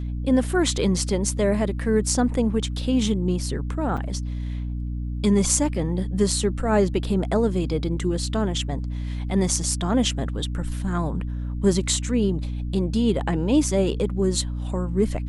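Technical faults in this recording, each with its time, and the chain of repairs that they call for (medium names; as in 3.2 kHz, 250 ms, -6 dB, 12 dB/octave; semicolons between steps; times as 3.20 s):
hum 60 Hz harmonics 5 -28 dBFS
3.97–3.98 s: dropout 5.9 ms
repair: de-hum 60 Hz, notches 5; interpolate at 3.97 s, 5.9 ms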